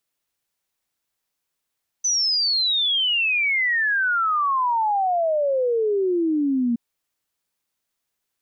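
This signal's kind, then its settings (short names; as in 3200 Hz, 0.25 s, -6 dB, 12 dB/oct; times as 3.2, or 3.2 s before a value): log sweep 6100 Hz -> 230 Hz 4.72 s -18 dBFS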